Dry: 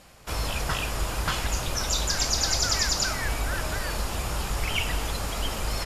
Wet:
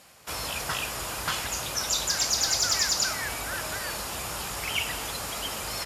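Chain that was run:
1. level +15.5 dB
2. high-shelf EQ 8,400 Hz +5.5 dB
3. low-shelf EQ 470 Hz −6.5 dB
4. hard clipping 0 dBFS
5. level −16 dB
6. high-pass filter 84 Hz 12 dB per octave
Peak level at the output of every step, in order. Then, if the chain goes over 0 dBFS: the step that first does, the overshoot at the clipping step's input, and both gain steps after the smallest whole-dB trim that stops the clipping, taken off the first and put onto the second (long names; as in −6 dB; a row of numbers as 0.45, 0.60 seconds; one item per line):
+5.0, +6.0, +5.5, 0.0, −16.0, −14.5 dBFS
step 1, 5.5 dB
step 1 +9.5 dB, step 5 −10 dB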